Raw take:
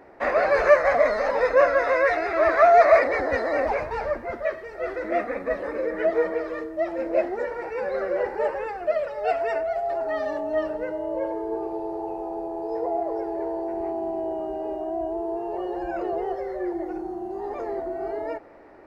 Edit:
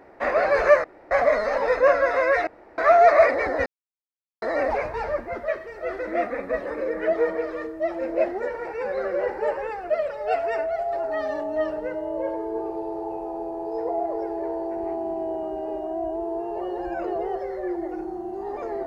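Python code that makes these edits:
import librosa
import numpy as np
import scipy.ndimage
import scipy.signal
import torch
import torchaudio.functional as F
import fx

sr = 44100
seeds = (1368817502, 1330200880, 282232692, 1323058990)

y = fx.edit(x, sr, fx.insert_room_tone(at_s=0.84, length_s=0.27),
    fx.room_tone_fill(start_s=2.2, length_s=0.31),
    fx.insert_silence(at_s=3.39, length_s=0.76), tone=tone)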